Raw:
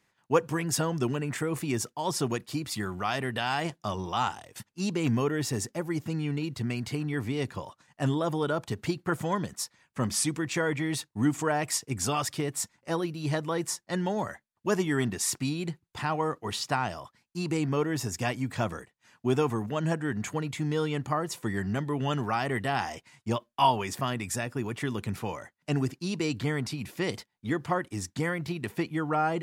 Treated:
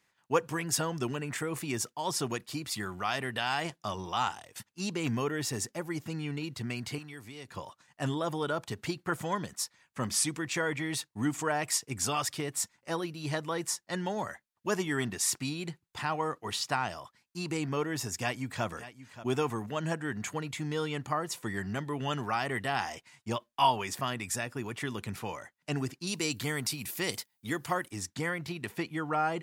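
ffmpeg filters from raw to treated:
-filter_complex "[0:a]asettb=1/sr,asplit=3[a][b][c];[a]atrim=end=6.984[d];[b]atrim=start=6.98:end=7.51,asetpts=PTS-STARTPTS,afade=t=in:d=0.004:c=qsin,afade=t=out:st=0.526:d=0.004:c=qsin,acrossover=split=820|4100[e][f][g];[e]acompressor=threshold=-42dB:ratio=4[h];[f]acompressor=threshold=-50dB:ratio=4[i];[g]acompressor=threshold=-56dB:ratio=4[j];[h][i][j]amix=inputs=3:normalize=0[k];[c]atrim=start=7.506[l];[d][k]acrossfade=d=0.004:c1=hsin:c2=qsin[m];[m][l]acrossfade=d=0.004:c1=qsin:c2=hsin,asplit=2[n][o];[o]afade=t=in:st=18.16:d=0.01,afade=t=out:st=18.65:d=0.01,aecho=0:1:580|1160:0.188365|0.0282547[p];[n][p]amix=inputs=2:normalize=0,asettb=1/sr,asplit=3[q][r][s];[q]atrim=end=26.074[t];[r]atrim=start=26.07:end=27.91,asetpts=PTS-STARTPTS,afade=t=in:d=0.004:c=qsin,afade=t=out:st=1.836:d=0.004:c=qsin,aemphasis=mode=production:type=50fm[u];[s]atrim=start=27.906[v];[t][u]acrossfade=d=0.004:c1=hsin:c2=qsin[w];[w][v]acrossfade=d=0.004:c1=qsin:c2=hsin,tiltshelf=f=690:g=-3,volume=-3dB"

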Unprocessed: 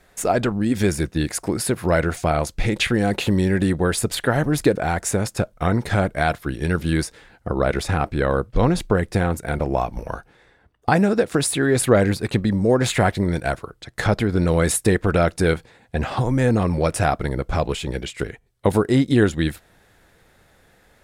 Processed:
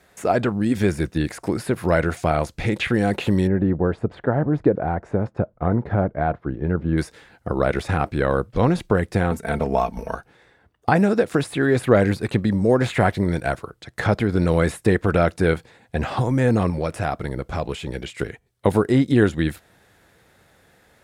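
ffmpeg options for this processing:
-filter_complex "[0:a]asettb=1/sr,asplit=3[a][b][c];[a]atrim=end=3.474[d];[b]atrim=start=3.47:end=6.98,asetpts=PTS-STARTPTS,afade=t=in:d=0.004:c=qsin,afade=t=out:st=3.506:d=0.004:c=qsin,lowpass=1k[e];[c]atrim=start=6.976[f];[d][e]acrossfade=d=0.004:c1=hsin:c2=qsin[g];[g][f]acrossfade=d=0.004:c1=qsin:c2=hsin,asettb=1/sr,asplit=3[h][i][j];[h]atrim=end=9.314[k];[i]atrim=start=9.31:end=10.15,asetpts=PTS-STARTPTS,afade=t=in:d=0.004:c=qsin,afade=t=out:st=0.836:d=0.004:c=qsin,aecho=1:1:4.5:0.65,atrim=end_sample=37044[l];[j]atrim=start=10.146[m];[k][l]acrossfade=d=0.004:c1=hsin:c2=qsin[n];[n][m]acrossfade=d=0.004:c1=qsin:c2=hsin,asettb=1/sr,asplit=3[o][p][q];[o]atrim=end=16.704[r];[p]atrim=start=16.7:end=18.18,asetpts=PTS-STARTPTS,afade=t=in:d=0.004:c=qsin,afade=t=out:st=1.476:d=0.004:c=qsin,acompressor=threshold=-27dB:ratio=1.5:attack=3.2:release=140:knee=1:detection=peak[s];[q]atrim=start=18.176[t];[r][s]acrossfade=d=0.004:c1=hsin:c2=qsin[u];[u][t]acrossfade=d=0.004:c1=qsin:c2=hsin,acrossover=split=2900[v][w];[w]acompressor=threshold=-38dB:ratio=4:attack=1:release=60[x];[v][x]amix=inputs=2:normalize=0,highpass=63"

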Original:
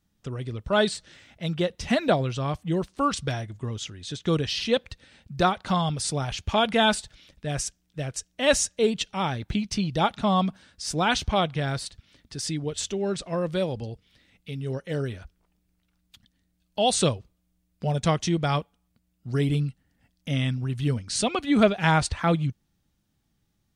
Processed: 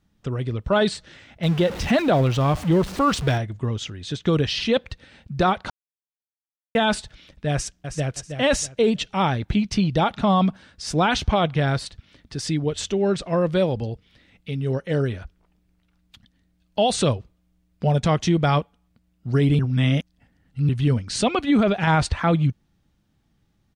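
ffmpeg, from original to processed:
-filter_complex "[0:a]asettb=1/sr,asplit=3[a][b][c];[a]atrim=end=1.434[d];[b]atrim=start=1.43:end=3.38,asetpts=PTS-STARTPTS,afade=t=in:d=0.004:c=qsin,afade=t=out:st=1.946:d=0.004:c=qsin,aeval=exprs='val(0)+0.5*0.0224*sgn(val(0))':c=same[e];[c]atrim=start=3.376[f];[d][e]acrossfade=d=0.004:c1=hsin:c2=qsin[g];[g][f]acrossfade=d=0.004:c1=qsin:c2=hsin,asplit=2[h][i];[i]afade=t=in:st=7.52:d=0.01,afade=t=out:st=8.16:d=0.01,aecho=0:1:320|640|960|1280:0.398107|0.119432|0.0358296|0.0107489[j];[h][j]amix=inputs=2:normalize=0,asplit=5[k][l][m][n][o];[k]atrim=end=5.7,asetpts=PTS-STARTPTS,afade=t=out:st=5.696:d=0.004:c=hsin[p];[l]atrim=start=5.7:end=6.75,asetpts=PTS-STARTPTS,volume=0[q];[m]atrim=start=6.75:end=19.592,asetpts=PTS-STARTPTS,afade=t=in:d=0.004:c=hsin[r];[n]atrim=start=19.588:end=20.692,asetpts=PTS-STARTPTS,areverse[s];[o]atrim=start=20.688[t];[p][q][r]concat=n=3:v=0:a=1[u];[u][s]acrossfade=d=0.004:c1=hsin:c2=hsin[v];[v][t]acrossfade=d=0.004:c1=hsin:c2=hsin,alimiter=limit=-16.5dB:level=0:latency=1:release=20,highshelf=f=5.3k:g=-11.5,volume=6.5dB"

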